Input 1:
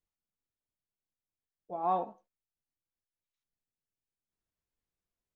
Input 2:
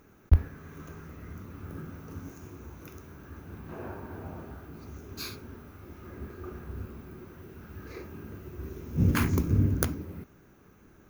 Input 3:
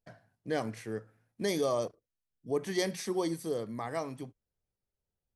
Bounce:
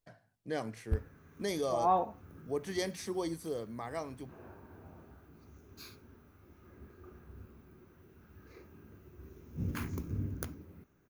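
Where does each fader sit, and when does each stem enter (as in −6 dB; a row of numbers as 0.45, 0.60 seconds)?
+2.0, −12.5, −4.0 decibels; 0.00, 0.60, 0.00 seconds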